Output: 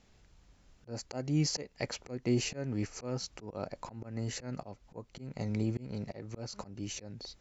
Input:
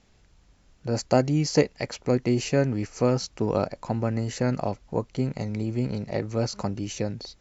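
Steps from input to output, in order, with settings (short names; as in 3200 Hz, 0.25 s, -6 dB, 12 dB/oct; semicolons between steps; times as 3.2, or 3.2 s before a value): auto swell 0.337 s; gain -3 dB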